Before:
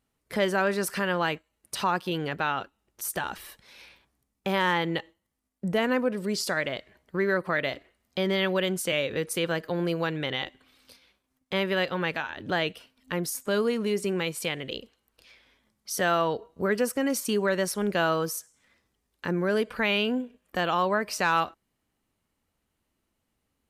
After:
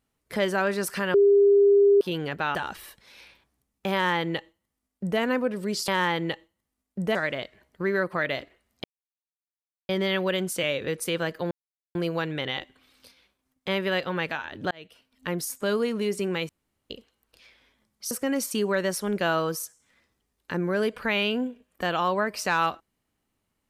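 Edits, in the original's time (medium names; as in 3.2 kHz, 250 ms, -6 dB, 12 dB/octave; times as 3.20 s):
1.14–2.01 s: bleep 402 Hz -14 dBFS
2.55–3.16 s: delete
4.54–5.81 s: copy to 6.49 s
8.18 s: insert silence 1.05 s
9.80 s: insert silence 0.44 s
12.56–13.12 s: fade in
14.34–14.75 s: room tone
15.96–16.85 s: delete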